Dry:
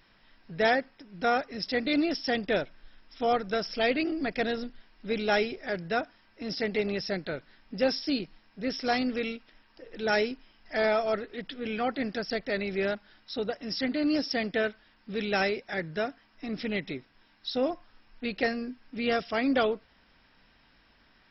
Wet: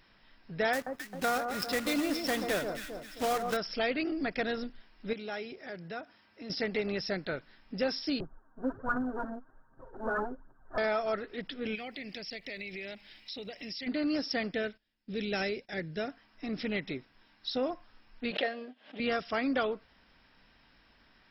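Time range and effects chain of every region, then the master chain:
0:00.73–0:03.57: one scale factor per block 3 bits + delay that swaps between a low-pass and a high-pass 133 ms, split 1,300 Hz, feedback 65%, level −7 dB
0:05.13–0:06.50: high-pass filter 93 Hz + downward compressor 2 to 1, threshold −44 dBFS
0:08.20–0:10.78: lower of the sound and its delayed copy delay 7.6 ms + Butterworth low-pass 1,600 Hz 96 dB per octave + phase shifter 1.3 Hz, delay 4.6 ms, feedback 54%
0:11.74–0:13.86: high shelf with overshoot 1,800 Hz +6.5 dB, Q 3 + downward compressor 5 to 1, threshold −38 dBFS + surface crackle 450 per second −64 dBFS
0:14.54–0:16.08: noise gate −54 dBFS, range −17 dB + parametric band 1,100 Hz −10.5 dB 1.4 octaves
0:18.31–0:19.00: mu-law and A-law mismatch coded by A + loudspeaker in its box 350–3,800 Hz, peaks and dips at 350 Hz −5 dB, 610 Hz +9 dB, 930 Hz −5 dB, 1,300 Hz −5 dB, 2,300 Hz −4 dB, 3,300 Hz +8 dB + background raised ahead of every attack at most 130 dB per second
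whole clip: dynamic equaliser 1,300 Hz, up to +4 dB, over −41 dBFS, Q 1.4; downward compressor 2 to 1, threshold −29 dBFS; level −1 dB

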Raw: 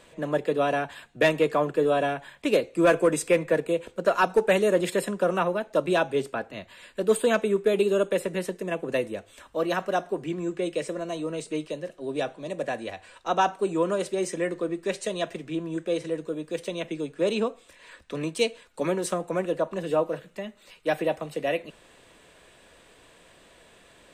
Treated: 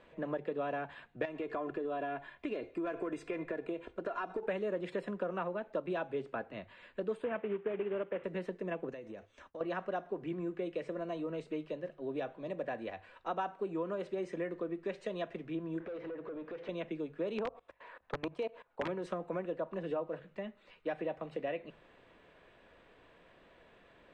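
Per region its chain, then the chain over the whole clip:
0:01.25–0:04.43: comb filter 2.9 ms, depth 49% + downward compressor, threshold −25 dBFS
0:07.24–0:08.24: variable-slope delta modulation 16 kbit/s + high-pass filter 150 Hz 6 dB per octave
0:08.89–0:09.61: downward expander −49 dBFS + parametric band 6,100 Hz +13 dB 0.47 octaves + downward compressor 10 to 1, threshold −36 dBFS
0:15.80–0:16.69: high-frequency loss of the air 99 metres + downward compressor, threshold −40 dBFS + mid-hump overdrive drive 24 dB, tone 1,200 Hz, clips at −27.5 dBFS
0:17.38–0:18.88: parametric band 810 Hz +14.5 dB 1.9 octaves + output level in coarse steps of 23 dB + wrap-around overflow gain 15.5 dB
whole clip: downward compressor 4 to 1, threshold −28 dBFS; low-pass filter 2,400 Hz 12 dB per octave; mains-hum notches 50/100/150 Hz; level −5.5 dB

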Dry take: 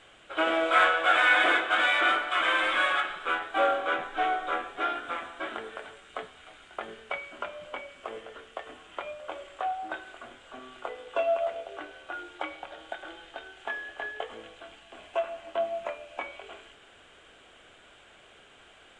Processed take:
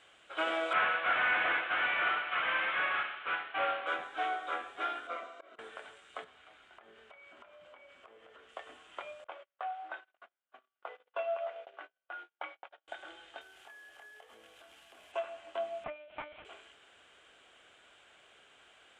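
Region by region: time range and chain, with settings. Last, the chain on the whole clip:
0:00.73–0:03.87: variable-slope delta modulation 16 kbit/s + spectral tilt +2.5 dB per octave
0:05.07–0:05.59: volume swells 358 ms + loudspeaker in its box 200–7,100 Hz, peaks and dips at 460 Hz +6 dB, 670 Hz +8 dB, 1,800 Hz −4 dB, 3,200 Hz −5 dB + notch comb filter 840 Hz
0:06.24–0:08.49: low-pass filter 2,800 Hz 6 dB per octave + downward compressor 12 to 1, threshold −45 dBFS
0:09.24–0:12.88: band-pass filter 500–2,800 Hz + noise gate −45 dBFS, range −37 dB
0:13.41–0:15.12: variable-slope delta modulation 64 kbit/s + downward compressor 4 to 1, threshold −47 dBFS
0:15.84–0:16.45: high-frequency loss of the air 67 metres + comb filter 5.5 ms, depth 48% + one-pitch LPC vocoder at 8 kHz 300 Hz
whole clip: high-pass filter 42 Hz; low-shelf EQ 420 Hz −8 dB; level −5 dB

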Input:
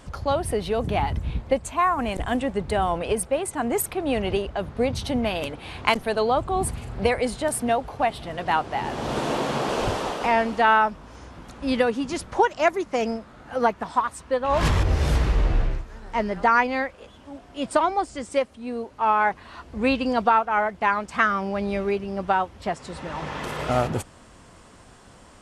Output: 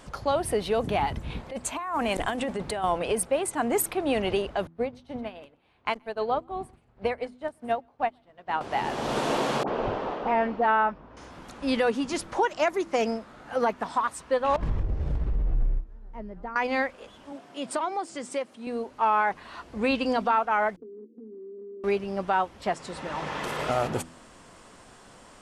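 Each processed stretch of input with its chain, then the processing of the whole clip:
0:01.30–0:02.84: low-shelf EQ 210 Hz −5 dB + compressor whose output falls as the input rises −28 dBFS
0:04.67–0:08.61: low-pass filter 2,300 Hz 6 dB per octave + single-tap delay 126 ms −17.5 dB + expander for the loud parts 2.5 to 1, over −34 dBFS
0:09.63–0:11.17: head-to-tape spacing loss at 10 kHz 37 dB + all-pass dispersion highs, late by 47 ms, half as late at 1,100 Hz
0:14.56–0:16.56: spectral tilt −4.5 dB per octave + expander for the loud parts 2.5 to 1, over −8 dBFS
0:17.32–0:18.67: high-pass filter 120 Hz 24 dB per octave + downward compressor 2 to 1, threshold −30 dBFS
0:20.76–0:21.84: Chebyshev band-pass filter 220–470 Hz, order 5 + downward compressor, threshold −39 dBFS
whole clip: brickwall limiter −14 dBFS; parametric band 66 Hz −9 dB 2.2 octaves; hum removal 82.88 Hz, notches 4

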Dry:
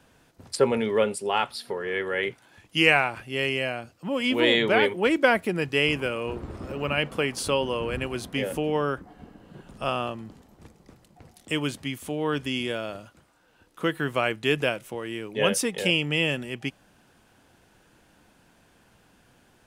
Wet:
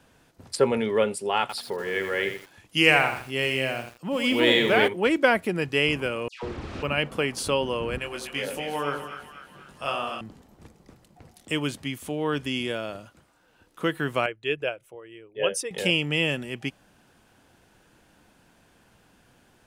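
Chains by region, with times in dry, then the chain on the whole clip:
0:01.41–0:04.88: high-shelf EQ 5,400 Hz +4 dB + feedback echo at a low word length 83 ms, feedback 35%, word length 7 bits, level −7.5 dB
0:06.28–0:06.83: linear delta modulator 64 kbit/s, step −32 dBFS + low-pass filter 4,000 Hz + all-pass dispersion lows, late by 149 ms, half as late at 1,800 Hz
0:07.98–0:10.21: low-shelf EQ 450 Hz −11.5 dB + double-tracking delay 21 ms −5 dB + echo with a time of its own for lows and highs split 1,100 Hz, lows 89 ms, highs 246 ms, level −7 dB
0:14.26–0:15.71: spectral envelope exaggerated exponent 1.5 + parametric band 230 Hz −14 dB 0.67 octaves + expander for the loud parts, over −44 dBFS
whole clip: no processing

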